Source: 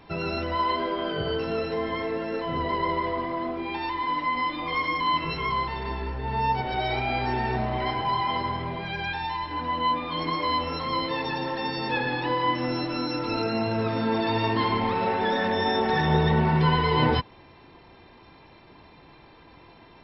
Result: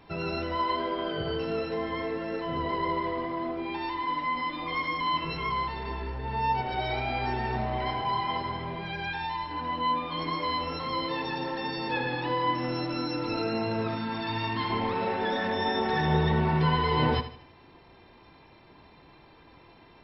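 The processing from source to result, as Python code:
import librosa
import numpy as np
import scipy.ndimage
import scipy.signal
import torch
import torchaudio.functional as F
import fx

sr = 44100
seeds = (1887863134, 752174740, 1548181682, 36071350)

p1 = fx.peak_eq(x, sr, hz=470.0, db=-11.5, octaves=1.1, at=(13.95, 14.7))
p2 = p1 + fx.echo_feedback(p1, sr, ms=78, feedback_pct=37, wet_db=-12.0, dry=0)
y = p2 * 10.0 ** (-3.5 / 20.0)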